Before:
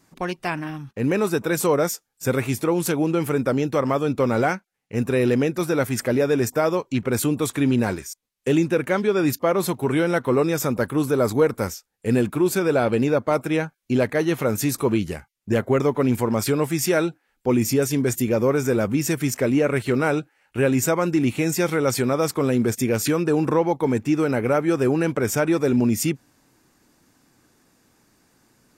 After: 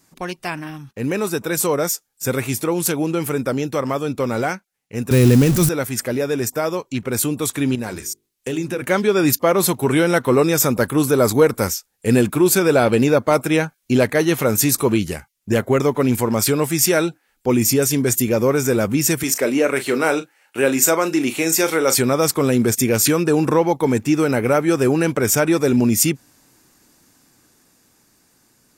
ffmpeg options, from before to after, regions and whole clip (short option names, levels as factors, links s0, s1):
-filter_complex "[0:a]asettb=1/sr,asplit=3[s0][s1][s2];[s0]atrim=end=5.114[s3];[s1]atrim=start=5.11:end=5.69,asetpts=PTS-STARTPTS,afade=t=in:d=0.004:c=qsin,afade=t=out:st=0.576:d=0.004:c=qsin,aeval=exprs='val(0)+0.5*0.0596*sgn(val(0))':c=same,bass=f=250:g=15,treble=f=4000:g=6[s4];[s2]atrim=start=5.686[s5];[s3][s4]acrossfade=d=0.004:c1=hsin:c2=qsin[s6];[s6][s5]acrossfade=d=0.004:c1=qsin:c2=hsin,asettb=1/sr,asplit=3[s7][s8][s9];[s7]atrim=end=7.754[s10];[s8]atrim=start=7.75:end=8.82,asetpts=PTS-STARTPTS,afade=t=in:d=0.004:c=qsin,afade=t=out:st=1.066:d=0.004:c=qsin,acompressor=threshold=0.0631:ratio=3:attack=3.2:release=140:knee=1:detection=peak,bandreject=f=50:t=h:w=6,bandreject=f=100:t=h:w=6,bandreject=f=150:t=h:w=6,bandreject=f=200:t=h:w=6,bandreject=f=250:t=h:w=6,bandreject=f=300:t=h:w=6,bandreject=f=350:t=h:w=6,bandreject=f=400:t=h:w=6,bandreject=f=450:t=h:w=6[s11];[s9]atrim=start=8.816[s12];[s10][s11]acrossfade=d=0.004:c1=hsin:c2=qsin[s13];[s13][s12]acrossfade=d=0.004:c1=qsin:c2=hsin,asettb=1/sr,asplit=3[s14][s15][s16];[s14]atrim=end=19.234[s17];[s15]atrim=start=19.23:end=21.98,asetpts=PTS-STARTPTS,afade=t=in:d=0.004:c=qsin,afade=t=out:st=2.746:d=0.004:c=qsin,highpass=290,asplit=2[s18][s19];[s19]adelay=37,volume=0.266[s20];[s18][s20]amix=inputs=2:normalize=0,atrim=end_sample=121275[s21];[s16]atrim=start=21.976[s22];[s17][s21]acrossfade=d=0.004:c1=hsin:c2=qsin[s23];[s23][s22]acrossfade=d=0.004:c1=qsin:c2=hsin,highshelf=f=4000:g=8.5,dynaudnorm=f=510:g=9:m=3.76,volume=0.891"